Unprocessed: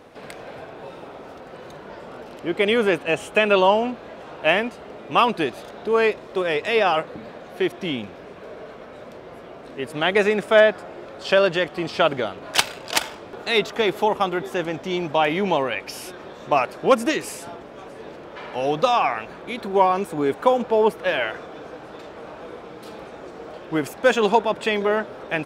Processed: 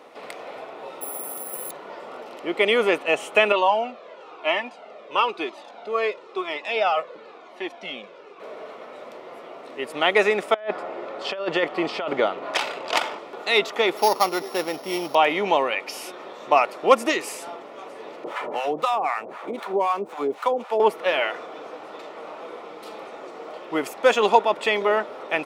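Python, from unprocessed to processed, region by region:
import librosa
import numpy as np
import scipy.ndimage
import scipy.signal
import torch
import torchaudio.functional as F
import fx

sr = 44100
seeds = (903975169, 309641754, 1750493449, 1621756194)

y = fx.chain(x, sr, fx.low_shelf(hz=220.0, db=5.5),
    fx.resample_bad(factor=4, down='none', up='zero_stuff'), at=(1.01, 1.71))
y = fx.chain(y, sr, fx.bandpass_edges(low_hz=190.0, high_hz=6900.0),
    fx.notch(hz=1900.0, q=17.0),
    fx.comb_cascade(direction='falling', hz=1.0), at=(3.52, 8.4))
y = fx.chain(y, sr, fx.lowpass(hz=2500.0, slope=6),
    fx.over_compress(threshold_db=-22.0, ratio=-0.5), at=(10.54, 13.19))
y = fx.chain(y, sr, fx.sample_sort(block=8),
    fx.peak_eq(hz=7000.0, db=-5.0, octaves=0.76), at=(13.97, 15.15))
y = fx.chain(y, sr, fx.median_filter(points=9),
    fx.harmonic_tremolo(hz=3.9, depth_pct=100, crossover_hz=740.0),
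    fx.band_squash(depth_pct=70), at=(18.24, 20.8))
y = scipy.signal.sosfilt(scipy.signal.butter(2, 310.0, 'highpass', fs=sr, output='sos'), y)
y = fx.peak_eq(y, sr, hz=1400.0, db=4.5, octaves=2.3)
y = fx.notch(y, sr, hz=1600.0, q=5.3)
y = F.gain(torch.from_numpy(y), -1.0).numpy()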